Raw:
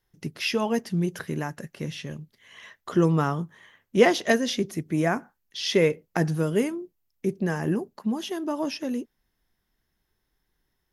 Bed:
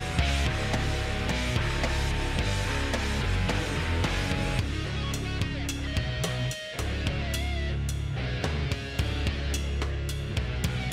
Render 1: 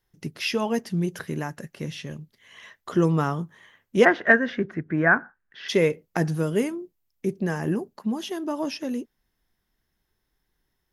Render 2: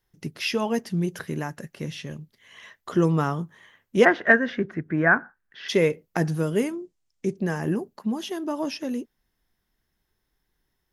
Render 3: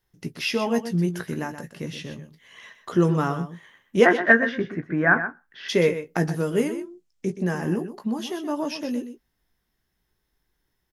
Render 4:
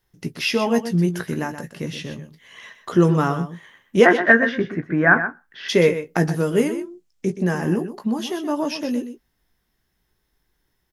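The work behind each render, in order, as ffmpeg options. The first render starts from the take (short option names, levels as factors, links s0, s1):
-filter_complex "[0:a]asplit=3[s0][s1][s2];[s0]afade=t=out:st=4.04:d=0.02[s3];[s1]lowpass=f=1600:t=q:w=5.6,afade=t=in:st=4.04:d=0.02,afade=t=out:st=5.68:d=0.02[s4];[s2]afade=t=in:st=5.68:d=0.02[s5];[s3][s4][s5]amix=inputs=3:normalize=0"
-filter_complex "[0:a]asettb=1/sr,asplit=3[s0][s1][s2];[s0]atrim=end=6.734[s3];[s1]atrim=start=6.73:end=7.37,asetpts=PTS-STARTPTS,afade=t=in:d=0.004:c=qsin,afade=t=out:st=0.636:d=0.004:c=qsin,lowpass=f=7400:t=q:w=1.7[s4];[s2]atrim=start=7.366[s5];[s3][s4]acrossfade=d=0.004:c1=hsin:c2=qsin[s6];[s6][s5]acrossfade=d=0.004:c1=qsin:c2=hsin"
-filter_complex "[0:a]asplit=2[s0][s1];[s1]adelay=17,volume=0.355[s2];[s0][s2]amix=inputs=2:normalize=0,aecho=1:1:125:0.282"
-af "volume=1.58,alimiter=limit=0.891:level=0:latency=1"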